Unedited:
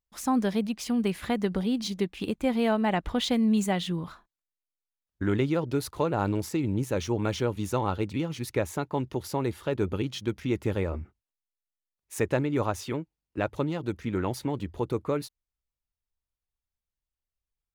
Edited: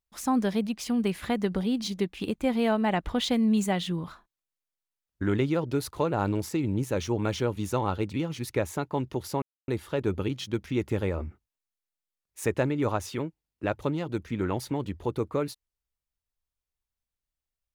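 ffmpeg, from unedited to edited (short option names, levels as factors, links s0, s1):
-filter_complex "[0:a]asplit=2[s0][s1];[s0]atrim=end=9.42,asetpts=PTS-STARTPTS,afade=t=out:st=9.416:d=0.004:c=hsin,apad=pad_dur=0.26[s2];[s1]atrim=start=9.42,asetpts=PTS-STARTPTS,afade=t=in:d=0.004:c=hsin[s3];[s2][s3]concat=n=2:v=0:a=1"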